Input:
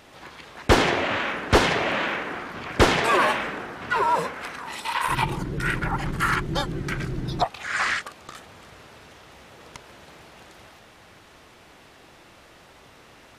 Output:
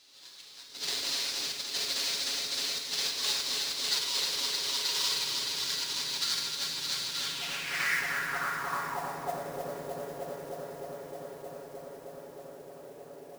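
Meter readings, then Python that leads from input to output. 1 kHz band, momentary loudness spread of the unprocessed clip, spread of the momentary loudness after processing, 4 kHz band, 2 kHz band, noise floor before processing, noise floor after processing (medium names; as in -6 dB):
-13.5 dB, 15 LU, 18 LU, +3.0 dB, -9.0 dB, -51 dBFS, -50 dBFS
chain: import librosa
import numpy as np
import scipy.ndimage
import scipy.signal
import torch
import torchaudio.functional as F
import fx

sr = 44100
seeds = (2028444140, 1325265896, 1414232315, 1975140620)

p1 = fx.halfwave_hold(x, sr)
p2 = fx.band_shelf(p1, sr, hz=1500.0, db=-9.5, octaves=3.0)
p3 = p2 + 0.64 * np.pad(p2, (int(7.2 * sr / 1000.0), 0))[:len(p2)]
p4 = p3 + fx.echo_heads(p3, sr, ms=310, heads='all three', feedback_pct=71, wet_db=-9.0, dry=0)
p5 = fx.over_compress(p4, sr, threshold_db=-19.0, ratio=-0.5)
p6 = fx.filter_sweep_bandpass(p5, sr, from_hz=4000.0, to_hz=580.0, start_s=7.09, end_s=9.53, q=3.5)
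p7 = fx.mod_noise(p6, sr, seeds[0], snr_db=15)
p8 = fx.rev_schroeder(p7, sr, rt60_s=1.9, comb_ms=33, drr_db=3.0)
y = F.gain(torch.from_numpy(p8), 2.5).numpy()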